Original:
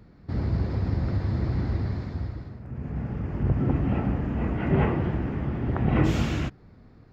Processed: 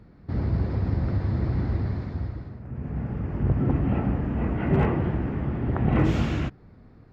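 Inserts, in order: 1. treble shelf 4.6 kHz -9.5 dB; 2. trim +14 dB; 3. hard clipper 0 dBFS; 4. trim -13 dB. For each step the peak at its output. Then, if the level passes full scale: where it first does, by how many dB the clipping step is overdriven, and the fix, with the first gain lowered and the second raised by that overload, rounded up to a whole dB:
-8.5 dBFS, +5.5 dBFS, 0.0 dBFS, -13.0 dBFS; step 2, 5.5 dB; step 2 +8 dB, step 4 -7 dB

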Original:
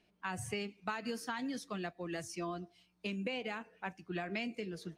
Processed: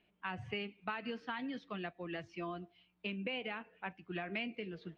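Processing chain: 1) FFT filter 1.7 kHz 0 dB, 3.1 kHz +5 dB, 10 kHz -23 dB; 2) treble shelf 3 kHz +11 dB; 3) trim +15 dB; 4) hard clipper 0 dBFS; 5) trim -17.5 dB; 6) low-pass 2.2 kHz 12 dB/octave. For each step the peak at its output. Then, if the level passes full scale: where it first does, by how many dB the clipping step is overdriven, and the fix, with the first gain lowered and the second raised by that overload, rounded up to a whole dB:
-23.5 dBFS, -20.0 dBFS, -5.0 dBFS, -5.0 dBFS, -22.5 dBFS, -25.0 dBFS; nothing clips

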